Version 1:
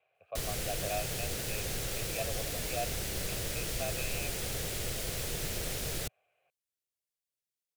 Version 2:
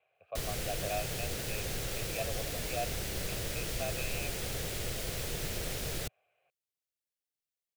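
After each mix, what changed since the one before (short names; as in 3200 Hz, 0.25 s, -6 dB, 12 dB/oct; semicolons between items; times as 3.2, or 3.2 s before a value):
background: add bell 10000 Hz -3 dB 1.7 oct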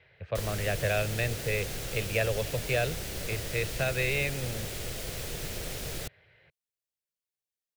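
speech: remove vowel filter a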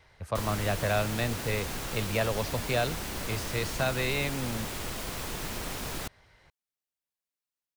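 speech: remove speaker cabinet 100–3600 Hz, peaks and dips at 250 Hz -4 dB, 1700 Hz +5 dB, 2500 Hz +6 dB; master: add ten-band EQ 125 Hz -4 dB, 250 Hz +8 dB, 500 Hz -6 dB, 1000 Hz +12 dB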